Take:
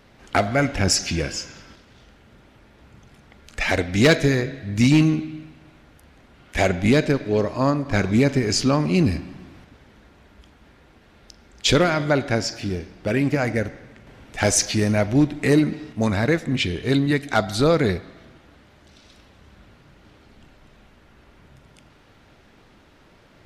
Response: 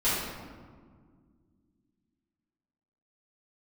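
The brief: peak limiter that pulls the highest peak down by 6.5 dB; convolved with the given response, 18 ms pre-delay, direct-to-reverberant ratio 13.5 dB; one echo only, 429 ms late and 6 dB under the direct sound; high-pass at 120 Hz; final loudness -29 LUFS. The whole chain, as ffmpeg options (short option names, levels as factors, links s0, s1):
-filter_complex "[0:a]highpass=120,alimiter=limit=0.316:level=0:latency=1,aecho=1:1:429:0.501,asplit=2[s0][s1];[1:a]atrim=start_sample=2205,adelay=18[s2];[s1][s2]afir=irnorm=-1:irlink=0,volume=0.0501[s3];[s0][s3]amix=inputs=2:normalize=0,volume=0.473"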